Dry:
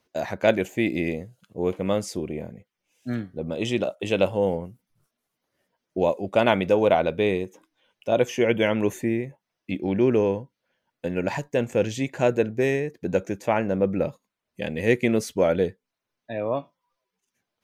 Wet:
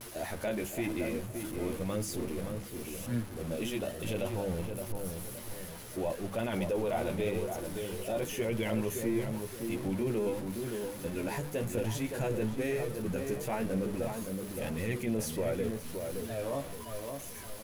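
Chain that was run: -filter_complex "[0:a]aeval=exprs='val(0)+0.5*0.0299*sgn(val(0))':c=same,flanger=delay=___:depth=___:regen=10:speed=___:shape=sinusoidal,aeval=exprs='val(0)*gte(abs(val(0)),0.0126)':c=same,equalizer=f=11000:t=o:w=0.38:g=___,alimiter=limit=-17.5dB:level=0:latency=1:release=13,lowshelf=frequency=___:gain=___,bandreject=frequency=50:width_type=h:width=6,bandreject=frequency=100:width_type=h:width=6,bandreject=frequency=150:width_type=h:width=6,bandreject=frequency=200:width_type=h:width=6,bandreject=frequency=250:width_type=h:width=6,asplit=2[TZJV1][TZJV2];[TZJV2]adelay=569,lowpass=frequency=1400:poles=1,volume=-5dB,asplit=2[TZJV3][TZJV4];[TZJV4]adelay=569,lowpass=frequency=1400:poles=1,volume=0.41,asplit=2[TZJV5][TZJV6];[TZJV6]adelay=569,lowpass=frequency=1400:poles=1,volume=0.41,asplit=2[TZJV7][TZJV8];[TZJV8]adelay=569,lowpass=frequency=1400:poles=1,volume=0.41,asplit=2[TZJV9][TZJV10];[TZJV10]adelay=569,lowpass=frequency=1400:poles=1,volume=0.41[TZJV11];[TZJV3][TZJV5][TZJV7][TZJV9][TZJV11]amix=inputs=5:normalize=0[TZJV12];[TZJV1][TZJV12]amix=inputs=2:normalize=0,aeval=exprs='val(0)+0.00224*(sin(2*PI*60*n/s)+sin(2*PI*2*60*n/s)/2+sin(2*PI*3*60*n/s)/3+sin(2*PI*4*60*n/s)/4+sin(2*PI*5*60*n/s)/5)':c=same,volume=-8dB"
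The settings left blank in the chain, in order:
8.3, 6.3, 0.93, 14, 97, 12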